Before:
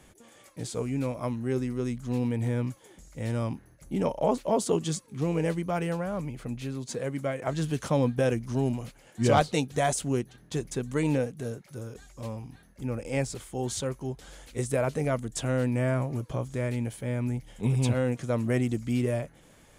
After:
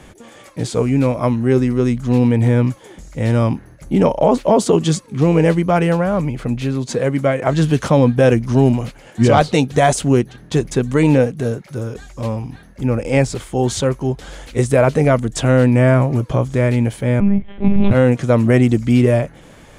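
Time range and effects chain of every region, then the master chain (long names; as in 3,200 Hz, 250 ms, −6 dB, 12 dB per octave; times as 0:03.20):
0:17.20–0:17.91: high-frequency loss of the air 300 metres + double-tracking delay 25 ms −8.5 dB + one-pitch LPC vocoder at 8 kHz 200 Hz
whole clip: high-shelf EQ 6,400 Hz −10.5 dB; boost into a limiter +17 dB; level −2.5 dB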